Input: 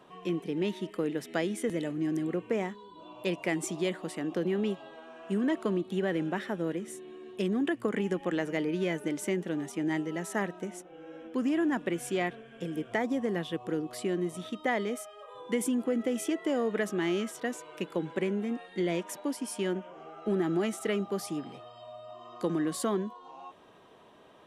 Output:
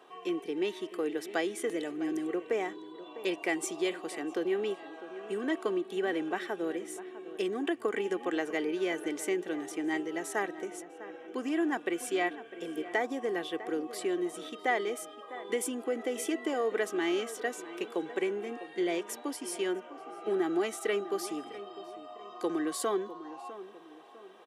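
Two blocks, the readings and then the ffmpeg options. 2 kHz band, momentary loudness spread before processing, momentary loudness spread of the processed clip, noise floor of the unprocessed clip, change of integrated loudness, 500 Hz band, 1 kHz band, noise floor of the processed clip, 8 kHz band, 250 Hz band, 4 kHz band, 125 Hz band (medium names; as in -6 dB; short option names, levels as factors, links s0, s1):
+1.0 dB, 12 LU, 13 LU, -53 dBFS, -1.5 dB, 0.0 dB, +1.5 dB, -50 dBFS, +1.0 dB, -3.5 dB, +1.0 dB, -16.0 dB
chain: -filter_complex "[0:a]highpass=350,aecho=1:1:2.6:0.45,asplit=2[s0][s1];[s1]adelay=652,lowpass=f=1900:p=1,volume=0.2,asplit=2[s2][s3];[s3]adelay=652,lowpass=f=1900:p=1,volume=0.4,asplit=2[s4][s5];[s5]adelay=652,lowpass=f=1900:p=1,volume=0.4,asplit=2[s6][s7];[s7]adelay=652,lowpass=f=1900:p=1,volume=0.4[s8];[s0][s2][s4][s6][s8]amix=inputs=5:normalize=0"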